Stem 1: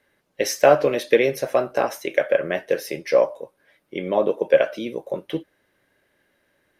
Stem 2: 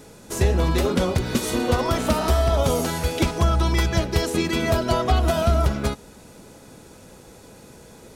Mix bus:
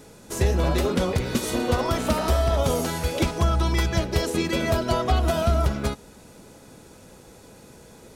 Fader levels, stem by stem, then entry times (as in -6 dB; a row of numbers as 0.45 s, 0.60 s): -18.0 dB, -2.0 dB; 0.00 s, 0.00 s